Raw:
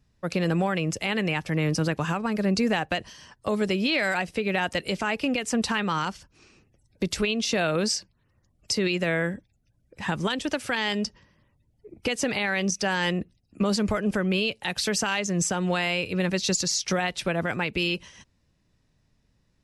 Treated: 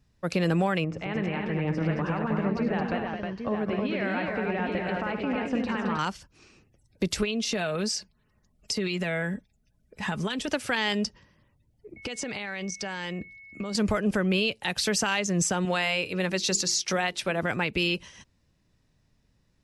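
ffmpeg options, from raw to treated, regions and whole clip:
-filter_complex "[0:a]asettb=1/sr,asplit=3[s0][s1][s2];[s0]atrim=end=0.844[s3];[s1]atrim=start=0.84:end=5.99,asetpts=PTS-STARTPTS,afade=t=in:d=0.004:c=qsin,afade=t=out:st=5.146:d=0.004:c=qsin,acompressor=threshold=0.0447:ratio=2.5:attack=3.2:release=140:knee=1:detection=peak,lowpass=1800,aecho=1:1:55|75|98|217|315|808:0.188|0.282|0.237|0.473|0.631|0.447,atrim=end_sample=227115[s4];[s2]atrim=start=5.986[s5];[s3][s4]acrossfade=d=0.004:c1=hsin:c2=qsin[s6];[s6][s5]acrossfade=d=0.004:c1=qsin:c2=hsin,asettb=1/sr,asplit=3[s7][s8][s9];[s7]atrim=end=7.234[s10];[s8]atrim=start=7.23:end=10.48,asetpts=PTS-STARTPTS,afade=t=in:d=0.004:c=qsin,afade=t=out:st=3.246:d=0.004:c=qsin,aecho=1:1:4.7:0.48,atrim=end_sample=143325,acompressor=threshold=0.0501:ratio=3:attack=3.2:release=140:knee=1:detection=peak[s11];[s9]atrim=start=10.476[s12];[s10][s11]acrossfade=d=0.004:c1=hsin:c2=qsin[s13];[s13][s12]acrossfade=d=0.004:c1=qsin:c2=hsin,asettb=1/sr,asplit=3[s14][s15][s16];[s14]atrim=end=11.964[s17];[s15]atrim=start=11.96:end=13.75,asetpts=PTS-STARTPTS,afade=t=in:d=0.004:c=qsin,afade=t=out:st=1.786:d=0.004:c=qsin,lowpass=f=8800:w=0.5412,lowpass=f=8800:w=1.3066,acompressor=threshold=0.0316:ratio=6:attack=3.2:release=140:knee=1:detection=peak,aeval=exprs='val(0)+0.00501*sin(2*PI*2200*n/s)':c=same[s18];[s16]atrim=start=13.746[s19];[s17][s18]acrossfade=d=0.004:c1=hsin:c2=qsin[s20];[s20][s19]acrossfade=d=0.004:c1=qsin:c2=hsin,asettb=1/sr,asplit=3[s21][s22][s23];[s21]atrim=end=15.654[s24];[s22]atrim=start=15.65:end=17.43,asetpts=PTS-STARTPTS,afade=t=in:d=0.004:c=qsin,afade=t=out:st=1.776:d=0.004:c=qsin,lowshelf=f=150:g=-10,bandreject=f=50:t=h:w=6,bandreject=f=100:t=h:w=6,bandreject=f=150:t=h:w=6,bandreject=f=200:t=h:w=6,bandreject=f=250:t=h:w=6,bandreject=f=300:t=h:w=6,bandreject=f=350:t=h:w=6,bandreject=f=400:t=h:w=6,bandreject=f=450:t=h:w=6[s25];[s23]atrim=start=17.426[s26];[s24][s25]acrossfade=d=0.004:c1=hsin:c2=qsin[s27];[s27][s26]acrossfade=d=0.004:c1=qsin:c2=hsin"

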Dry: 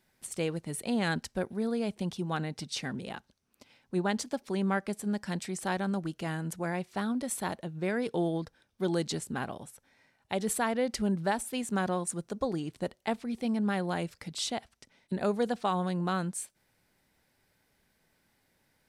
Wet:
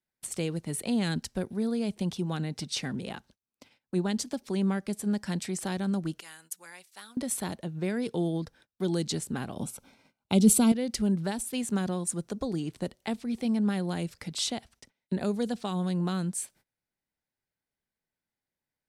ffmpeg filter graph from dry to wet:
-filter_complex "[0:a]asettb=1/sr,asplit=3[s0][s1][s2];[s0]atrim=end=6.204[s3];[s1]atrim=start=6.2:end=7.17,asetpts=PTS-STARTPTS,afade=t=in:d=0.004:c=qsin,afade=t=out:st=0.966:d=0.004:c=qsin,aderivative,bandreject=f=680:w=11[s4];[s2]atrim=start=7.166[s5];[s3][s4]acrossfade=d=0.004:c1=hsin:c2=qsin[s6];[s6][s5]acrossfade=d=0.004:c1=qsin:c2=hsin,asettb=1/sr,asplit=3[s7][s8][s9];[s7]atrim=end=9.574[s10];[s8]atrim=start=9.57:end=10.72,asetpts=PTS-STARTPTS,afade=t=in:d=0.004:c=qsin,afade=t=out:st=1.146:d=0.004:c=qsin,equalizer=f=220:t=o:w=0.98:g=6.5,acontrast=59,asuperstop=centerf=1800:order=4:qfactor=3.4[s11];[s9]atrim=start=10.716[s12];[s10][s11]acrossfade=d=0.004:c1=hsin:c2=qsin[s13];[s13][s12]acrossfade=d=0.004:c1=qsin:c2=hsin,agate=range=0.0631:threshold=0.00112:ratio=16:detection=peak,acrossover=split=360|3000[s14][s15][s16];[s15]acompressor=threshold=0.00708:ratio=3[s17];[s14][s17][s16]amix=inputs=3:normalize=0,volume=1.5"

